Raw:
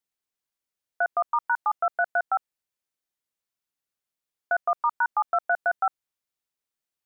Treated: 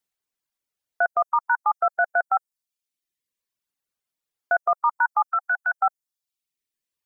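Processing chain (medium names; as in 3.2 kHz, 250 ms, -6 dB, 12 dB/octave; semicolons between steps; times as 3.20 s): reverb removal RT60 0.91 s; 5.28–5.72 s: steep high-pass 790 Hz 96 dB/octave; trim +3.5 dB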